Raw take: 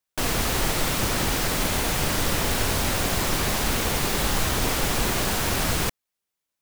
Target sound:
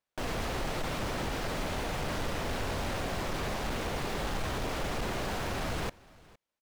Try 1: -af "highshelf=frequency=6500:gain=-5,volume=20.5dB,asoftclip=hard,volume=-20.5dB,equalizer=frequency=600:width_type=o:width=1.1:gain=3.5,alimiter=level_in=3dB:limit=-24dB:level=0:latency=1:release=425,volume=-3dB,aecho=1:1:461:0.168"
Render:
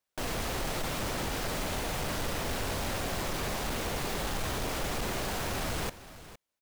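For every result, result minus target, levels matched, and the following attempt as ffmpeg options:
echo-to-direct +7.5 dB; 8,000 Hz band +5.0 dB
-af "highshelf=frequency=6500:gain=-5,volume=20.5dB,asoftclip=hard,volume=-20.5dB,equalizer=frequency=600:width_type=o:width=1.1:gain=3.5,alimiter=level_in=3dB:limit=-24dB:level=0:latency=1:release=425,volume=-3dB,aecho=1:1:461:0.0708"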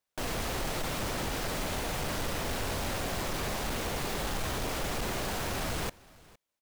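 8,000 Hz band +5.0 dB
-af "highshelf=frequency=6500:gain=-16,volume=20.5dB,asoftclip=hard,volume=-20.5dB,equalizer=frequency=600:width_type=o:width=1.1:gain=3.5,alimiter=level_in=3dB:limit=-24dB:level=0:latency=1:release=425,volume=-3dB,aecho=1:1:461:0.0708"

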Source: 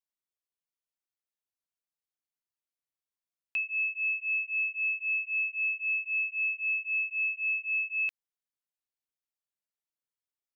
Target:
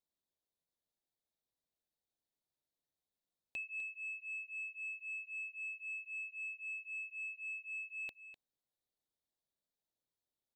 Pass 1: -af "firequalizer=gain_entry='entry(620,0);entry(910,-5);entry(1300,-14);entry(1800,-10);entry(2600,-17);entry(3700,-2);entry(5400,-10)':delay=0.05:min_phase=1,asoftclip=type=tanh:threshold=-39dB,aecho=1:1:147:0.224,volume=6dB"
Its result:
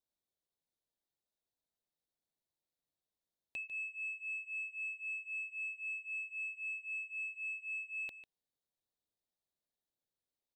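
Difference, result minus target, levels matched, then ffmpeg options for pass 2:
echo 104 ms early
-af "firequalizer=gain_entry='entry(620,0);entry(910,-5);entry(1300,-14);entry(1800,-10);entry(2600,-17);entry(3700,-2);entry(5400,-10)':delay=0.05:min_phase=1,asoftclip=type=tanh:threshold=-39dB,aecho=1:1:251:0.224,volume=6dB"

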